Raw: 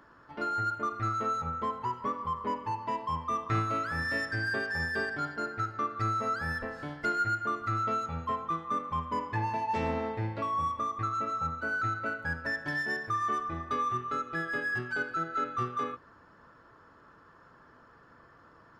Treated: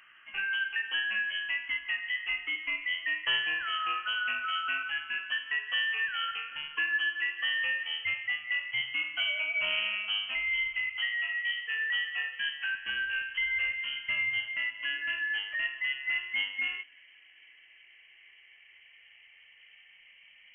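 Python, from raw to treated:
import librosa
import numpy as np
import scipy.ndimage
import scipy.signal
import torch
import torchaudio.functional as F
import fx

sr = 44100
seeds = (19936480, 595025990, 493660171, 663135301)

y = fx.speed_glide(x, sr, from_pct=110, to_pct=73)
y = fx.freq_invert(y, sr, carrier_hz=3100)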